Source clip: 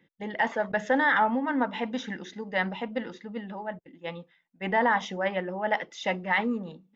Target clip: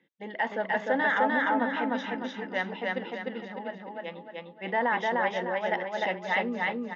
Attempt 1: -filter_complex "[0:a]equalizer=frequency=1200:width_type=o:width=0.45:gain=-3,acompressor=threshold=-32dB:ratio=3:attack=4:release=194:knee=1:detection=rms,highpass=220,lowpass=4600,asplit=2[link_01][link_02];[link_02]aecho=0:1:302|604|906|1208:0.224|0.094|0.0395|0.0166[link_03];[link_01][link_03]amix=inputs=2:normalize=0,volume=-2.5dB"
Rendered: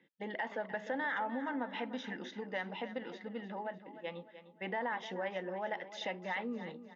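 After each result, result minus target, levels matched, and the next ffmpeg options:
downward compressor: peak gain reduction +11 dB; echo-to-direct −11.5 dB
-filter_complex "[0:a]highpass=220,lowpass=4600,equalizer=frequency=1200:width_type=o:width=0.45:gain=-3,asplit=2[link_01][link_02];[link_02]aecho=0:1:302|604|906|1208:0.224|0.094|0.0395|0.0166[link_03];[link_01][link_03]amix=inputs=2:normalize=0,volume=-2.5dB"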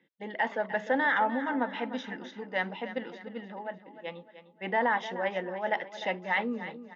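echo-to-direct −11.5 dB
-filter_complex "[0:a]highpass=220,lowpass=4600,equalizer=frequency=1200:width_type=o:width=0.45:gain=-3,asplit=2[link_01][link_02];[link_02]aecho=0:1:302|604|906|1208|1510|1812:0.841|0.353|0.148|0.0623|0.0262|0.011[link_03];[link_01][link_03]amix=inputs=2:normalize=0,volume=-2.5dB"

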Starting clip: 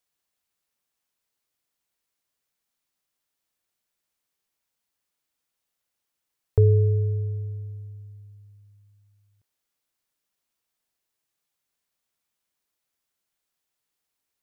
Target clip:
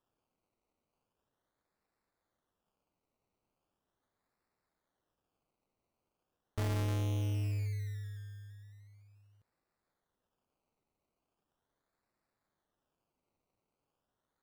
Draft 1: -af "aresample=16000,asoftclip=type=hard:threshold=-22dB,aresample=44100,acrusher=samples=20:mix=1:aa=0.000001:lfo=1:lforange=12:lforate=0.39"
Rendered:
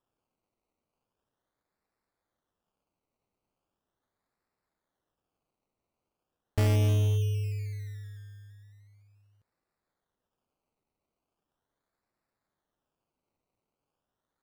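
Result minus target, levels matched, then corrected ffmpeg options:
hard clipping: distortion −5 dB
-af "aresample=16000,asoftclip=type=hard:threshold=-32dB,aresample=44100,acrusher=samples=20:mix=1:aa=0.000001:lfo=1:lforange=12:lforate=0.39"

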